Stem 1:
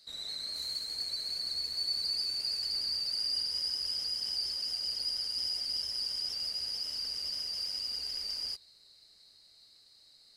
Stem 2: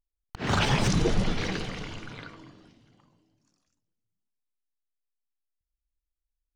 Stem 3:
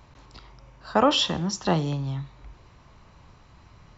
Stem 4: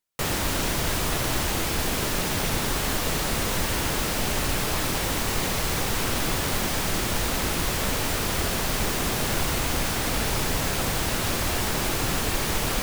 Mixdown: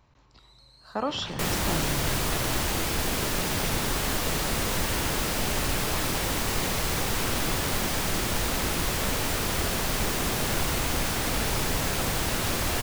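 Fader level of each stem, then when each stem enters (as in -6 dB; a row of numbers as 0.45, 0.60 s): -19.0, -14.5, -9.5, -1.5 dB; 0.30, 0.65, 0.00, 1.20 s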